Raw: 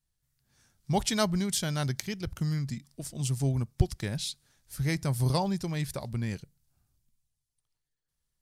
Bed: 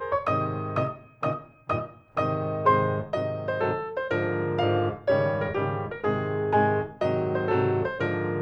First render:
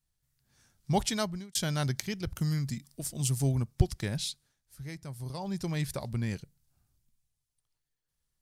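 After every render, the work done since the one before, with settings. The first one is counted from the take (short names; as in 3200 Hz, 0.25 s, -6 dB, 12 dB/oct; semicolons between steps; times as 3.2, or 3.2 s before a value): 0.98–1.55 fade out; 2.35–3.55 high shelf 8500 Hz +9 dB; 4.26–5.67 dip -12.5 dB, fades 0.30 s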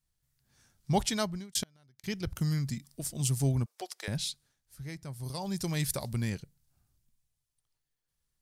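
1.6–2.04 flipped gate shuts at -22 dBFS, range -34 dB; 3.66–4.08 HPF 500 Hz 24 dB/oct; 5.23–6.3 high shelf 4900 Hz +11 dB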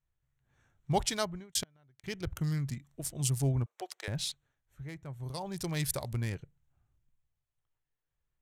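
Wiener smoothing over 9 samples; bell 210 Hz -8 dB 0.53 oct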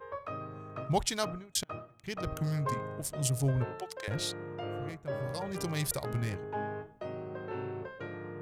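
add bed -14.5 dB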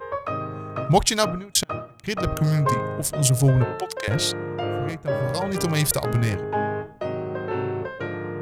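gain +11.5 dB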